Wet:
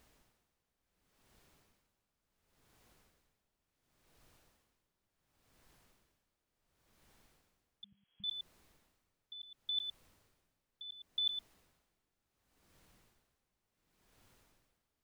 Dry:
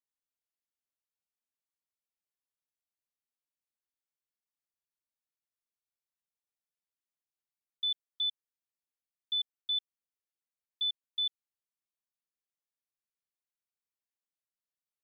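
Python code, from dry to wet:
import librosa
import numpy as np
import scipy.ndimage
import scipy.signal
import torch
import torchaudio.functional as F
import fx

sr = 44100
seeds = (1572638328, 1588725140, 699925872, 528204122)

y = fx.over_compress(x, sr, threshold_db=-35.0, ratio=-1.0)
y = fx.dmg_noise_colour(y, sr, seeds[0], colour='pink', level_db=-73.0)
y = y + 10.0 ** (-10.0 / 20.0) * np.pad(y, (int(111 * sr / 1000.0), 0))[:len(y)]
y = fx.freq_invert(y, sr, carrier_hz=3300, at=(7.84, 8.24))
y = y * 10.0 ** (-19 * (0.5 - 0.5 * np.cos(2.0 * np.pi * 0.7 * np.arange(len(y)) / sr)) / 20.0)
y = F.gain(torch.from_numpy(y), 5.0).numpy()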